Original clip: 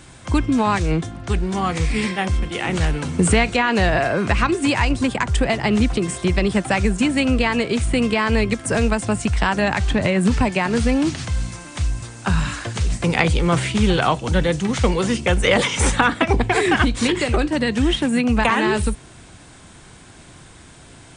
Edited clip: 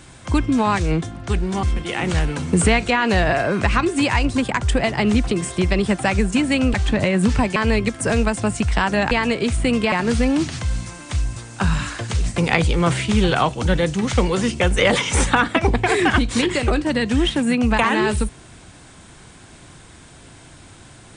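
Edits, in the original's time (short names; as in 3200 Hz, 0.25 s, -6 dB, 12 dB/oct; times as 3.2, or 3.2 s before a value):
1.63–2.29 cut
7.4–8.21 swap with 9.76–10.58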